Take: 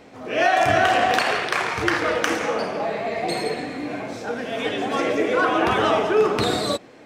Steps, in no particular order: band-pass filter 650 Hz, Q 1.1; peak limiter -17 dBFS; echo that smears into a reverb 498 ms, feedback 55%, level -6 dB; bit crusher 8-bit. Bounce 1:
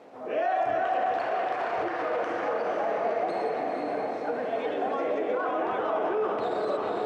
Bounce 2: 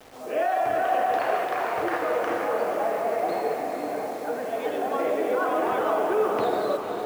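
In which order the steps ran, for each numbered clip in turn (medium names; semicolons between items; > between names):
bit crusher > echo that smears into a reverb > peak limiter > band-pass filter; band-pass filter > peak limiter > bit crusher > echo that smears into a reverb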